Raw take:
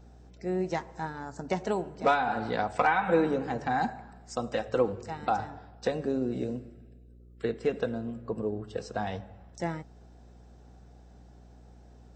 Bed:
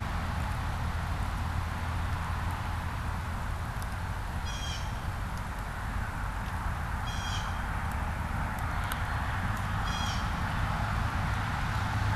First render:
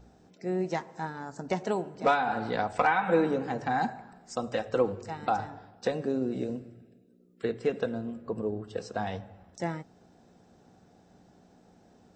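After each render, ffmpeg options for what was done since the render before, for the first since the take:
-af "bandreject=f=60:t=h:w=4,bandreject=f=120:t=h:w=4"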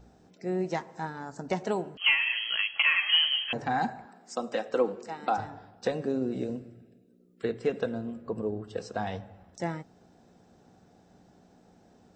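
-filter_complex "[0:a]asettb=1/sr,asplit=3[a][b][c];[a]atrim=end=1.974[d];[b]atrim=start=1.97:end=3.53,asetpts=PTS-STARTPTS,afade=t=in:d=0.004:c=qsin,afade=t=out:st=1.556:d=0.004:c=qsin,lowpass=f=2.9k:t=q:w=0.5098,lowpass=f=2.9k:t=q:w=0.6013,lowpass=f=2.9k:t=q:w=0.9,lowpass=f=2.9k:t=q:w=2.563,afreqshift=-3400[e];[c]atrim=start=3.526[f];[d][e]acrossfade=d=0.004:c1=hsin:c2=qsin[g];[g][f]acrossfade=d=0.004:c1=qsin:c2=hsin,asettb=1/sr,asplit=3[h][i][j];[h]atrim=end=4.054[k];[i]atrim=start=4.05:end=5.38,asetpts=PTS-STARTPTS,afade=t=in:d=0.004:c=qsin,afade=t=out:st=1.326:d=0.004:c=qsin,highpass=f=200:w=0.5412,highpass=f=200:w=1.3066[l];[j]atrim=start=5.376[m];[k][l]acrossfade=d=0.004:c1=hsin:c2=qsin[n];[n][m]acrossfade=d=0.004:c1=qsin:c2=hsin"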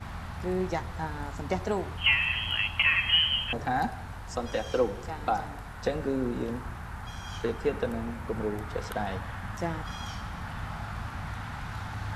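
-filter_complex "[1:a]volume=-6dB[a];[0:a][a]amix=inputs=2:normalize=0"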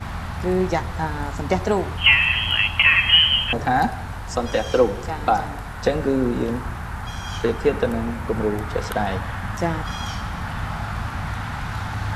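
-af "volume=9dB,alimiter=limit=-3dB:level=0:latency=1"

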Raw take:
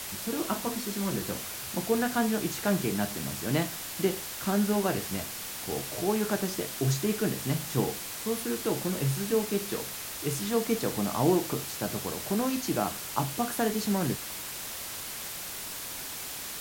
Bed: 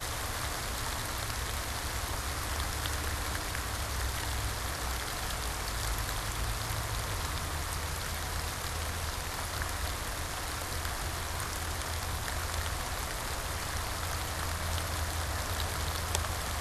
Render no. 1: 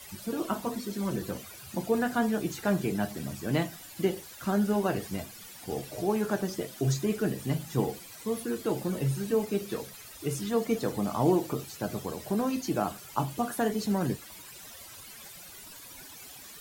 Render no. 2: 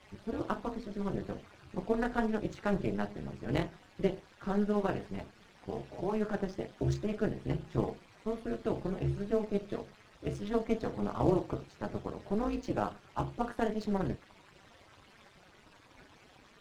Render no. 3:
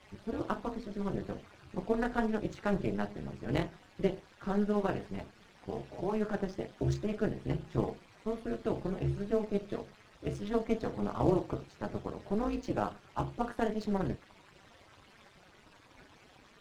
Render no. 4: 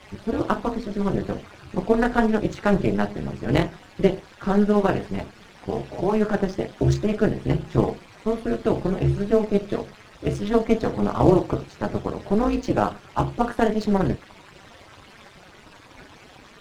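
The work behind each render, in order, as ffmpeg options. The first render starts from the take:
-af "afftdn=nr=14:nf=-39"
-af "tremolo=f=210:d=0.889,adynamicsmooth=sensitivity=7:basefreq=2.3k"
-af anull
-af "volume=11.5dB"

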